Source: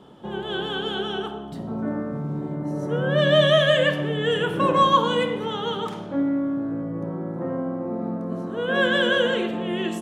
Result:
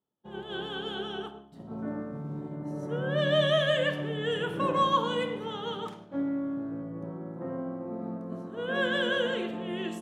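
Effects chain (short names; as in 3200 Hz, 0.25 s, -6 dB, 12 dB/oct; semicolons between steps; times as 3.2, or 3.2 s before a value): expander -27 dBFS; gain -7.5 dB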